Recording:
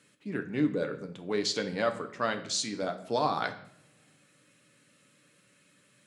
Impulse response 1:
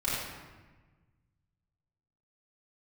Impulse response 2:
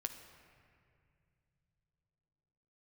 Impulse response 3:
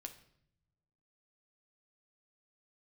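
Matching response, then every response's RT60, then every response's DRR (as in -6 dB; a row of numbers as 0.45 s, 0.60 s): 3; 1.3 s, 2.5 s, no single decay rate; -9.5 dB, 6.0 dB, 5.5 dB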